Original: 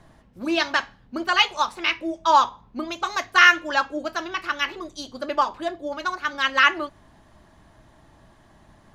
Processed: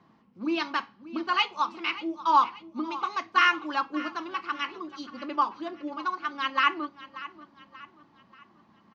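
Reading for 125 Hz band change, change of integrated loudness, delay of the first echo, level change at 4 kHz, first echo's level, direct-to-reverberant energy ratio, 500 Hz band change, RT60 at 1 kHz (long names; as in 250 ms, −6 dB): can't be measured, −6.5 dB, 584 ms, −8.0 dB, −16.5 dB, no reverb audible, −9.5 dB, no reverb audible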